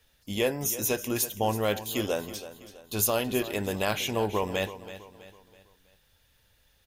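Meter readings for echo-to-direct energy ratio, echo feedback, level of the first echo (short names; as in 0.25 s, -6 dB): -13.0 dB, 42%, -14.0 dB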